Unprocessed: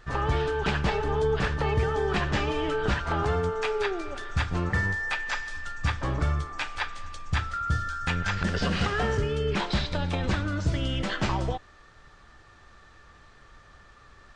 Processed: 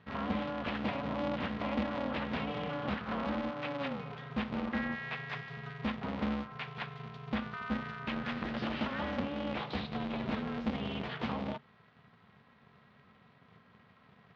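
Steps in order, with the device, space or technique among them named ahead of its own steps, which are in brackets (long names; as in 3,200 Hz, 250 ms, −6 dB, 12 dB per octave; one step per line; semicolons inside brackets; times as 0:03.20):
ring modulator pedal into a guitar cabinet (ring modulator with a square carrier 140 Hz; loudspeaker in its box 99–3,700 Hz, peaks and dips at 230 Hz +6 dB, 330 Hz −7 dB, 1,600 Hz −4 dB)
level −8.5 dB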